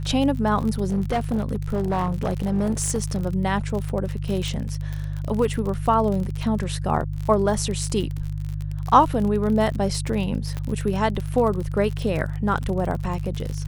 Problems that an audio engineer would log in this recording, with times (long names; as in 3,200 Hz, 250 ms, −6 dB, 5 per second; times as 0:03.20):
surface crackle 46 per second −27 dBFS
mains hum 50 Hz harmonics 3 −28 dBFS
0:00.84–0:03.24: clipping −18 dBFS
0:04.48: click
0:10.57: click −18 dBFS